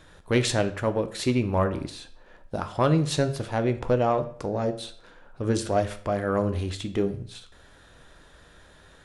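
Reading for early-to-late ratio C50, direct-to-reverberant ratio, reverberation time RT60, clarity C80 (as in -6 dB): 14.0 dB, 8.5 dB, 0.55 s, 18.0 dB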